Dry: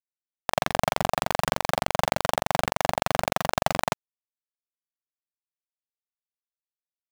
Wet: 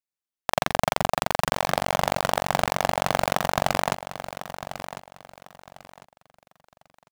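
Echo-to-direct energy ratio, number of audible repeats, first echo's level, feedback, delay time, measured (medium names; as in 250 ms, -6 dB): -11.5 dB, 3, -12.0 dB, 28%, 1050 ms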